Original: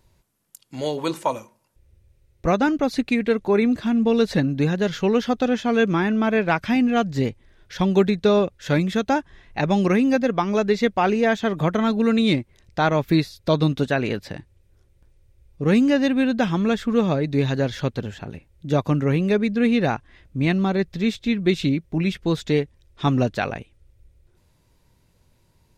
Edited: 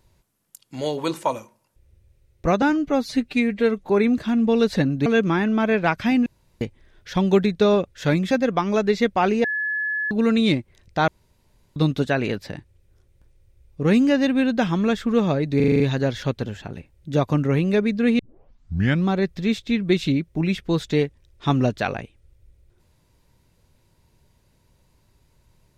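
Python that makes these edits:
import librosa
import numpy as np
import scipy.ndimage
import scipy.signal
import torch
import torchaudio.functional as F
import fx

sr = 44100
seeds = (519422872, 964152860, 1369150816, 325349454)

y = fx.edit(x, sr, fx.stretch_span(start_s=2.62, length_s=0.84, factor=1.5),
    fx.cut(start_s=4.64, length_s=1.06),
    fx.room_tone_fill(start_s=6.9, length_s=0.35),
    fx.cut(start_s=8.95, length_s=1.17),
    fx.bleep(start_s=11.25, length_s=0.67, hz=1710.0, db=-22.0),
    fx.room_tone_fill(start_s=12.89, length_s=0.68),
    fx.stutter(start_s=17.37, slice_s=0.04, count=7),
    fx.tape_start(start_s=19.76, length_s=0.88), tone=tone)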